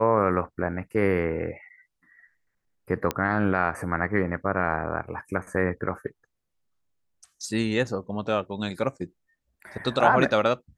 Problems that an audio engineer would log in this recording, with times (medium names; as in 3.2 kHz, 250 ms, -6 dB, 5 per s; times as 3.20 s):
3.11 s: pop -11 dBFS